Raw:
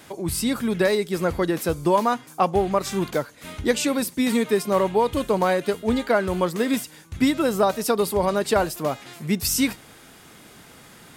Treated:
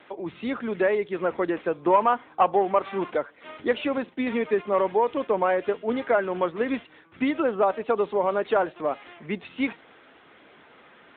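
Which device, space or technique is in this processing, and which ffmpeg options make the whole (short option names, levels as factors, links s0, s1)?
telephone: -filter_complex "[0:a]asettb=1/sr,asplit=3[s0][s1][s2];[s0]atrim=end=1.814[s3];[s1]atrim=start=1.81:end=3.1,asetpts=PTS-STARTPTS,afade=t=in:d=0.004:c=qsin,afade=t=out:st=1.286:d=0.004:c=qsin,equalizer=f=880:w=0.78:g=3.5[s4];[s2]atrim=start=3.096[s5];[s3][s4]acrossfade=d=0.004:c1=hsin:c2=qsin[s6];[s6][s5]acrossfade=d=0.004:c1=qsin:c2=hsin,highpass=330,lowpass=3200,asoftclip=type=tanh:threshold=0.355" -ar 8000 -c:a libopencore_amrnb -b:a 10200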